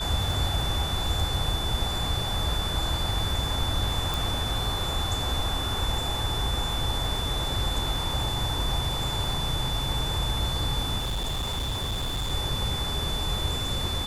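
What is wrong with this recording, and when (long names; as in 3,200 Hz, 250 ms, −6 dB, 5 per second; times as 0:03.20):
surface crackle 57 per second −35 dBFS
whistle 3,500 Hz −31 dBFS
0:04.14: click
0:10.99–0:12.32: clipping −25.5 dBFS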